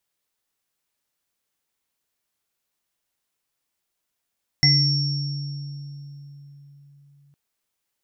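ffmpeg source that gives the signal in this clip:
-f lavfi -i "aevalsrc='0.15*pow(10,-3*t/4.34)*sin(2*PI*142*t)+0.0237*pow(10,-3*t/2.72)*sin(2*PI*297*t)+0.0211*pow(10,-3*t/0.23)*sin(2*PI*735*t)+0.106*pow(10,-3*t/0.37)*sin(2*PI*2030*t)+0.211*pow(10,-3*t/1.96)*sin(2*PI*5480*t)':d=2.71:s=44100"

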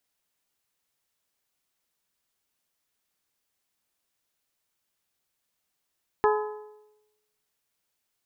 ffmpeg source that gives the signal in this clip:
-f lavfi -i "aevalsrc='0.119*pow(10,-3*t/0.97)*sin(2*PI*424*t)+0.0841*pow(10,-3*t/0.788)*sin(2*PI*848*t)+0.0596*pow(10,-3*t/0.746)*sin(2*PI*1017.6*t)+0.0422*pow(10,-3*t/0.698)*sin(2*PI*1272*t)+0.0299*pow(10,-3*t/0.64)*sin(2*PI*1696*t)':d=1.55:s=44100"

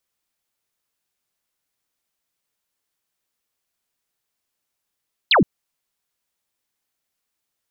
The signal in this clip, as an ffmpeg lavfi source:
-f lavfi -i "aevalsrc='0.282*clip(t/0.002,0,1)*clip((0.12-t)/0.002,0,1)*sin(2*PI*4600*0.12/log(140/4600)*(exp(log(140/4600)*t/0.12)-1))':d=0.12:s=44100"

